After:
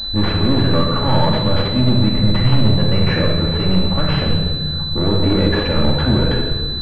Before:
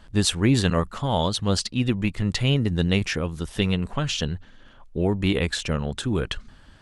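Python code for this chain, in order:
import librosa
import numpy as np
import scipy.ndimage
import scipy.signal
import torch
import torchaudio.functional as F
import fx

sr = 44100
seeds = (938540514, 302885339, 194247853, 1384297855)

p1 = fx.over_compress(x, sr, threshold_db=-25.0, ratio=-1.0)
p2 = x + (p1 * librosa.db_to_amplitude(1.5))
p3 = np.clip(10.0 ** (20.5 / 20.0) * p2, -1.0, 1.0) / 10.0 ** (20.5 / 20.0)
p4 = fx.room_shoebox(p3, sr, seeds[0], volume_m3=1600.0, walls='mixed', distance_m=2.4)
p5 = fx.pwm(p4, sr, carrier_hz=4000.0)
y = p5 * librosa.db_to_amplitude(2.5)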